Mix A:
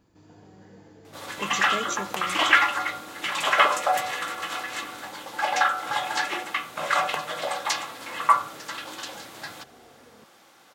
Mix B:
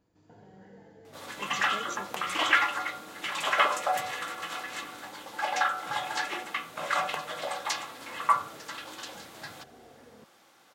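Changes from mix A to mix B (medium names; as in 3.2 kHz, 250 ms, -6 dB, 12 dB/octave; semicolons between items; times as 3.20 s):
speech -9.5 dB; second sound -5.0 dB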